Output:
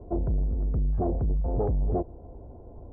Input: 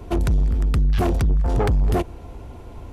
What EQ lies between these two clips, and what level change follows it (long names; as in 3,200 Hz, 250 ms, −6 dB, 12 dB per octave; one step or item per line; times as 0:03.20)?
transistor ladder low-pass 780 Hz, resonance 35%
0.0 dB